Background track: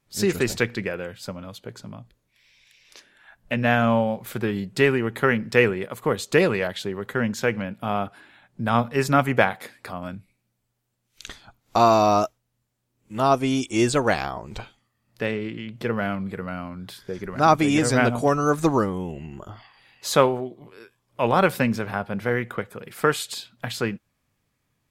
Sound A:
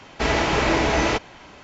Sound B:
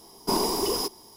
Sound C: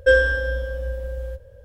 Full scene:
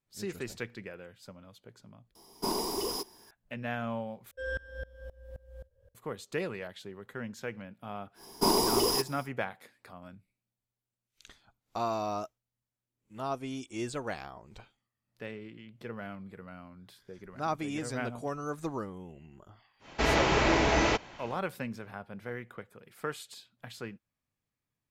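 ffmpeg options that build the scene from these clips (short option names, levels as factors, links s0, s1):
-filter_complex "[2:a]asplit=2[s0][s1];[0:a]volume=0.168[s2];[3:a]aeval=exprs='val(0)*pow(10,-25*if(lt(mod(-3.8*n/s,1),2*abs(-3.8)/1000),1-mod(-3.8*n/s,1)/(2*abs(-3.8)/1000),(mod(-3.8*n/s,1)-2*abs(-3.8)/1000)/(1-2*abs(-3.8)/1000))/20)':c=same[s3];[s2]asplit=2[s4][s5];[s4]atrim=end=4.314[s6];[s3]atrim=end=1.64,asetpts=PTS-STARTPTS,volume=0.282[s7];[s5]atrim=start=5.946[s8];[s0]atrim=end=1.16,asetpts=PTS-STARTPTS,volume=0.447,afade=t=in:d=0.004:c=hsin,afade=t=out:st=1.156:d=0.004:c=hsin,adelay=2150[s9];[s1]atrim=end=1.16,asetpts=PTS-STARTPTS,volume=0.944,afade=t=in:d=0.1,afade=t=out:st=1.06:d=0.1,adelay=8140[s10];[1:a]atrim=end=1.63,asetpts=PTS-STARTPTS,volume=0.562,afade=t=in:d=0.1,afade=t=out:st=1.53:d=0.1,adelay=19790[s11];[s6][s7]acrossfade=d=0.004:c1=hsin:c2=hsin[s12];[s12][s8]acrossfade=d=0.004:c1=hsin:c2=hsin[s13];[s13][s9][s10][s11]amix=inputs=4:normalize=0"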